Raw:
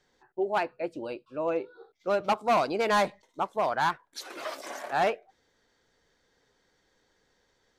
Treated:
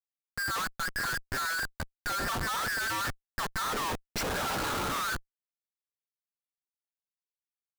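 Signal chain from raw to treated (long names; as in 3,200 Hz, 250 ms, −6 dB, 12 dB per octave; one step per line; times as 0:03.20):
frequency inversion band by band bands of 2,000 Hz
comparator with hysteresis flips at −43 dBFS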